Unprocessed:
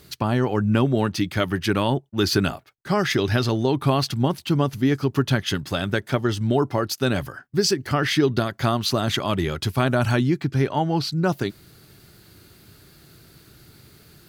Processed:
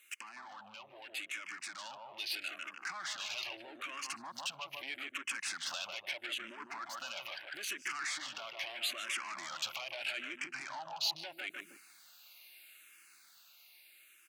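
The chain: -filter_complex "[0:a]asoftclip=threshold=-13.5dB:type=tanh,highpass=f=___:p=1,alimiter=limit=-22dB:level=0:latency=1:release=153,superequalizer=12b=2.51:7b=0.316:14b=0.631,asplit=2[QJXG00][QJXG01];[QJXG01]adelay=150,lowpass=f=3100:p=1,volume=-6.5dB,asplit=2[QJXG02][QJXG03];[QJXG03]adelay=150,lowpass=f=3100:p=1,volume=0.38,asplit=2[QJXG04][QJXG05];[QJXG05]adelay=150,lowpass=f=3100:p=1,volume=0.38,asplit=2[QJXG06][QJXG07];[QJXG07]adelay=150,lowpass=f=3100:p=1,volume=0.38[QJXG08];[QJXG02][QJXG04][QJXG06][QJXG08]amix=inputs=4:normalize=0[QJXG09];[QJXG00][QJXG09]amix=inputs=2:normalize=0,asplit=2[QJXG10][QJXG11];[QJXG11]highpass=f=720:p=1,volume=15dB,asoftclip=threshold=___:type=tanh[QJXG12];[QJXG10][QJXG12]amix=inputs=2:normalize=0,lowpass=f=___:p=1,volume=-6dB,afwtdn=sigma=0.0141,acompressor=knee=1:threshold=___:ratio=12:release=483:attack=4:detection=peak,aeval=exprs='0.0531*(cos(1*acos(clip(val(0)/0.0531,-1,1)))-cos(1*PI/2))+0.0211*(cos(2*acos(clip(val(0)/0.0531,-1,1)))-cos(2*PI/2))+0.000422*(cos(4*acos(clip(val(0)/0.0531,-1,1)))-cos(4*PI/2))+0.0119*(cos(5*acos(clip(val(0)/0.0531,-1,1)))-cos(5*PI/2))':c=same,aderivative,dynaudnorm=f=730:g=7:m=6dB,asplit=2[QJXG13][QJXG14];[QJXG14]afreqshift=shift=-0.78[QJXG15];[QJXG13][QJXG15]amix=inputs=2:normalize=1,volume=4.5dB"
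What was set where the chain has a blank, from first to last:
320, -16dB, 1900, -34dB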